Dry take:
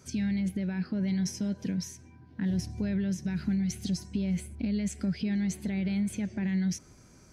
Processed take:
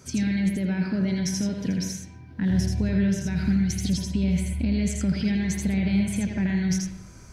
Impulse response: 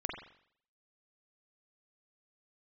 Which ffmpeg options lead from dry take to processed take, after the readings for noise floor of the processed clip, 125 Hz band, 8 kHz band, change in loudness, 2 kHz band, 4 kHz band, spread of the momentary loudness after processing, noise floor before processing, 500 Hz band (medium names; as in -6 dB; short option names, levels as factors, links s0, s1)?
-45 dBFS, +7.0 dB, +7.5 dB, +6.0 dB, +8.0 dB, +7.5 dB, 5 LU, -55 dBFS, +6.5 dB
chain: -filter_complex "[0:a]asplit=2[s0][s1];[s1]equalizer=f=6900:w=1.5:g=2.5[s2];[1:a]atrim=start_sample=2205,lowshelf=f=210:g=-11,adelay=82[s3];[s2][s3]afir=irnorm=-1:irlink=0,volume=0.708[s4];[s0][s4]amix=inputs=2:normalize=0,asubboost=boost=3:cutoff=130,volume=1.88"